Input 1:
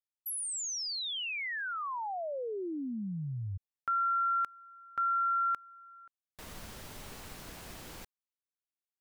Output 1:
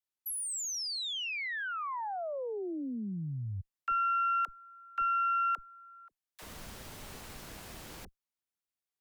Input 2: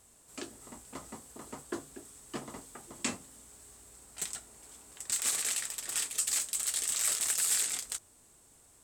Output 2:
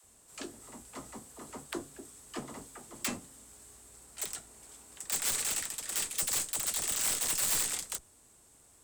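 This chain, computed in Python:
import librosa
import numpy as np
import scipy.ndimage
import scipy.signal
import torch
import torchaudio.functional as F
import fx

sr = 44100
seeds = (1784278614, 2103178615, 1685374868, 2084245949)

y = fx.cheby_harmonics(x, sr, harmonics=(4,), levels_db=(-19,), full_scale_db=-17.0)
y = (np.mod(10.0 ** (21.0 / 20.0) * y + 1.0, 2.0) - 1.0) / 10.0 ** (21.0 / 20.0)
y = fx.dispersion(y, sr, late='lows', ms=41.0, hz=420.0)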